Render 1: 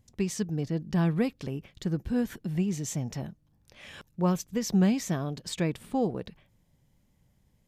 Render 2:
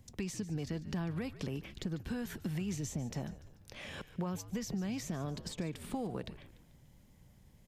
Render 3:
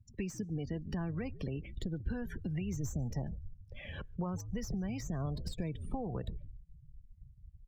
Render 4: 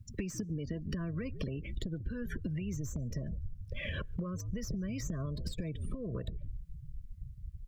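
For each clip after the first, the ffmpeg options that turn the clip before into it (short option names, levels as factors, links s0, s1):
-filter_complex "[0:a]alimiter=level_in=1.12:limit=0.0631:level=0:latency=1:release=201,volume=0.891,acrossover=split=160|850[s0][s1][s2];[s0]acompressor=threshold=0.00282:ratio=4[s3];[s1]acompressor=threshold=0.00562:ratio=4[s4];[s2]acompressor=threshold=0.00251:ratio=4[s5];[s3][s4][s5]amix=inputs=3:normalize=0,asplit=5[s6][s7][s8][s9][s10];[s7]adelay=146,afreqshift=-76,volume=0.178[s11];[s8]adelay=292,afreqshift=-152,volume=0.0822[s12];[s9]adelay=438,afreqshift=-228,volume=0.0376[s13];[s10]adelay=584,afreqshift=-304,volume=0.0174[s14];[s6][s11][s12][s13][s14]amix=inputs=5:normalize=0,volume=1.88"
-filter_complex "[0:a]afftdn=nr=31:nf=-46,asubboost=boost=5.5:cutoff=96,acrossover=split=220|2800[s0][s1][s2];[s2]aeval=exprs='clip(val(0),-1,0.00335)':c=same[s3];[s0][s1][s3]amix=inputs=3:normalize=0,volume=1.12"
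-af "acompressor=threshold=0.00708:ratio=16,asuperstop=centerf=820:order=20:qfactor=2.5,aeval=exprs='0.0158*(cos(1*acos(clip(val(0)/0.0158,-1,1)))-cos(1*PI/2))+0.000112*(cos(4*acos(clip(val(0)/0.0158,-1,1)))-cos(4*PI/2))':c=same,volume=3.16"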